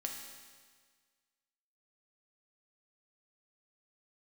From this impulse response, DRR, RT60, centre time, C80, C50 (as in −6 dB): 1.0 dB, 1.6 s, 54 ms, 5.5 dB, 3.5 dB